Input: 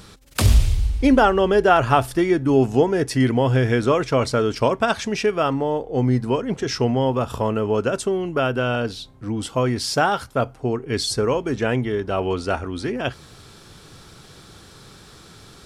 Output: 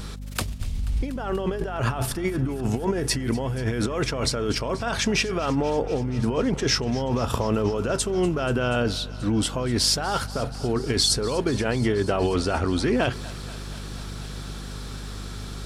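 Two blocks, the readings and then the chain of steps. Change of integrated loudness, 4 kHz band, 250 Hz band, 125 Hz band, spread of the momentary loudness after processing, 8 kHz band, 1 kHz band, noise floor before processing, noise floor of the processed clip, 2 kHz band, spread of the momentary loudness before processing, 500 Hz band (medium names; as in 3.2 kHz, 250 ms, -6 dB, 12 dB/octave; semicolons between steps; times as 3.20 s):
-4.0 dB, +2.5 dB, -4.0 dB, -3.5 dB, 13 LU, +4.0 dB, -7.5 dB, -46 dBFS, -35 dBFS, -4.0 dB, 9 LU, -6.0 dB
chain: compressor with a negative ratio -25 dBFS, ratio -1; hum 50 Hz, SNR 10 dB; thinning echo 241 ms, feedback 83%, level -18.5 dB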